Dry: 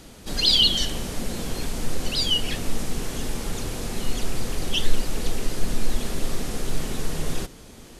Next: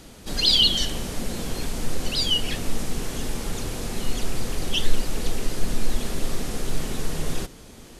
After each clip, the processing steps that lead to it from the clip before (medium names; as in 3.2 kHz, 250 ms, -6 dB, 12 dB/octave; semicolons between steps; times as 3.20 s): no audible change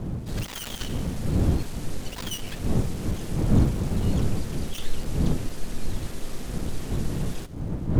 dead-time distortion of 0.13 ms; wind noise 170 Hz -20 dBFS; trim -7 dB